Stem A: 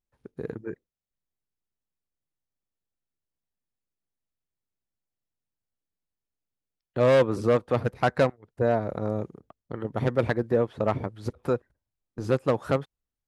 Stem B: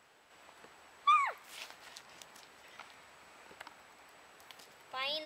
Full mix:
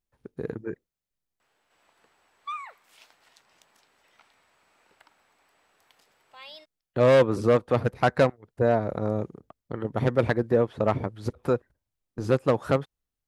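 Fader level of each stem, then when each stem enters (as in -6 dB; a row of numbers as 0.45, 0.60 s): +1.5, -8.0 dB; 0.00, 1.40 s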